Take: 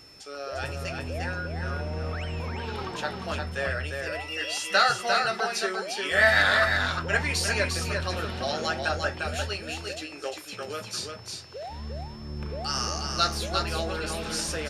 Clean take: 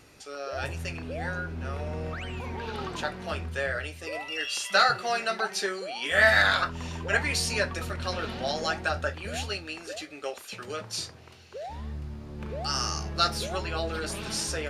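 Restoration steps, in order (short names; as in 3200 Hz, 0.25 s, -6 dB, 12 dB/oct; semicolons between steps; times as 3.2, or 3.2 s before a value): notch 5300 Hz, Q 30; inverse comb 0.35 s -4.5 dB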